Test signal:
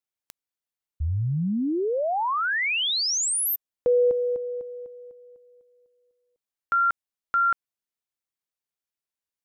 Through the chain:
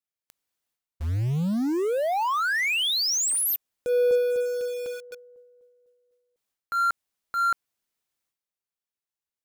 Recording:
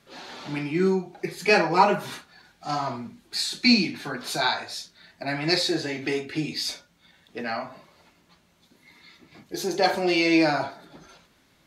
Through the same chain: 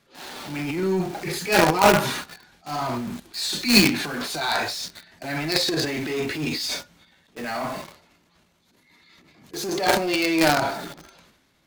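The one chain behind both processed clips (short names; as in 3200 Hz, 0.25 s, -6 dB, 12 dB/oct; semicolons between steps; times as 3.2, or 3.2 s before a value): transient shaper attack -9 dB, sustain +11 dB; in parallel at -6.5 dB: companded quantiser 2-bit; on the sum: gain -3 dB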